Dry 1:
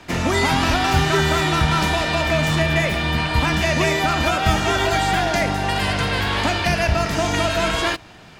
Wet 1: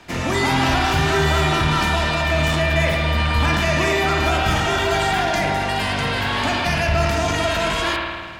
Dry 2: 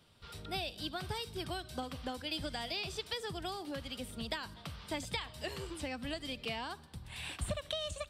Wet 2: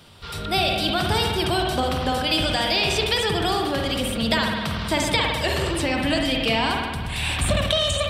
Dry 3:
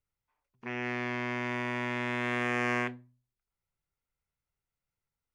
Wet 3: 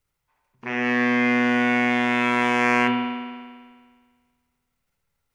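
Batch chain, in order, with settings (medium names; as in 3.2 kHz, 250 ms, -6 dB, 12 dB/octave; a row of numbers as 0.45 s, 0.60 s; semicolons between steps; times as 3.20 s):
hum notches 60/120/180/240/300/360/420/480/540/600 Hz; spring tank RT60 1.7 s, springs 53 ms, chirp 25 ms, DRR 2 dB; transient shaper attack -1 dB, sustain +6 dB; peak normalisation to -6 dBFS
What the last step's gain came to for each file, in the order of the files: -2.0 dB, +16.0 dB, +10.0 dB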